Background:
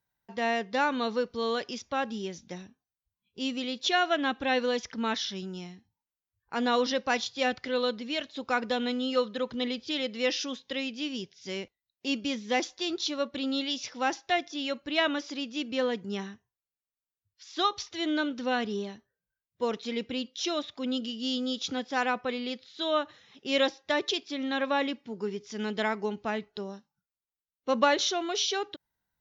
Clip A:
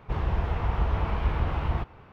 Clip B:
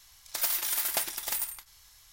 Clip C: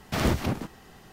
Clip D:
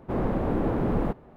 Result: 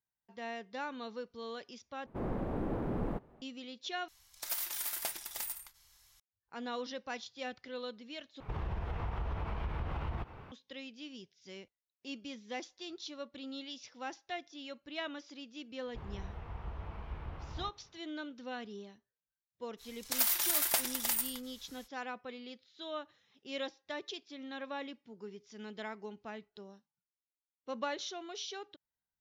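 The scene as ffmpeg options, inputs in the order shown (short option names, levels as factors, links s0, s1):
-filter_complex "[2:a]asplit=2[s0][s1];[1:a]asplit=2[s2][s3];[0:a]volume=0.211[s4];[s2]acompressor=threshold=0.0224:ratio=6:attack=3.2:release=140:knee=1:detection=peak[s5];[s4]asplit=4[s6][s7][s8][s9];[s6]atrim=end=2.064[s10];[4:a]atrim=end=1.36,asetpts=PTS-STARTPTS,volume=0.316[s11];[s7]atrim=start=3.416:end=4.084[s12];[s0]atrim=end=2.12,asetpts=PTS-STARTPTS,volume=0.398[s13];[s8]atrim=start=6.196:end=8.404[s14];[s5]atrim=end=2.12,asetpts=PTS-STARTPTS,volume=0.944[s15];[s9]atrim=start=10.516[s16];[s3]atrim=end=2.12,asetpts=PTS-STARTPTS,volume=0.141,afade=t=in:d=0.004:c=hsin,afade=t=out:st=2.116:d=0.004:c=hsin,adelay=15860[s17];[s1]atrim=end=2.12,asetpts=PTS-STARTPTS,volume=0.891,afade=t=in:d=0.05,afade=t=out:st=2.07:d=0.05,adelay=19770[s18];[s10][s11]acrossfade=d=0.004:c1=hsin:c2=hsin[s19];[s19][s12]acrossfade=d=0.004:c1=hsin:c2=hsin[s20];[s20][s13]acrossfade=d=0.004:c1=hsin:c2=hsin[s21];[s21][s14]acrossfade=d=0.004:c1=hsin:c2=hsin[s22];[s22][s15]acrossfade=d=0.004:c1=hsin:c2=hsin[s23];[s23][s16]acrossfade=d=0.004:c1=hsin:c2=hsin[s24];[s24][s17][s18]amix=inputs=3:normalize=0"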